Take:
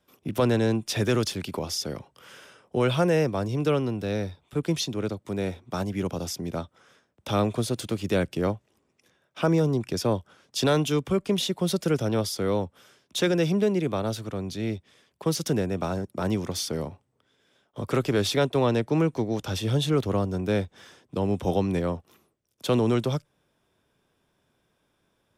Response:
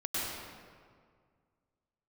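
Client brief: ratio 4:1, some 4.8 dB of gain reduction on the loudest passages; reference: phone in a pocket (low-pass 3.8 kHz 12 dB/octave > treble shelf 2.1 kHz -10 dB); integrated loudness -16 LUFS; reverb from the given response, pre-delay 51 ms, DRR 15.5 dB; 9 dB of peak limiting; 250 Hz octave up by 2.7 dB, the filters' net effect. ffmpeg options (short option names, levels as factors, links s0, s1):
-filter_complex "[0:a]equalizer=f=250:t=o:g=4,acompressor=threshold=0.0794:ratio=4,alimiter=limit=0.0841:level=0:latency=1,asplit=2[s0][s1];[1:a]atrim=start_sample=2205,adelay=51[s2];[s1][s2]afir=irnorm=-1:irlink=0,volume=0.0794[s3];[s0][s3]amix=inputs=2:normalize=0,lowpass=3800,highshelf=f=2100:g=-10,volume=6.31"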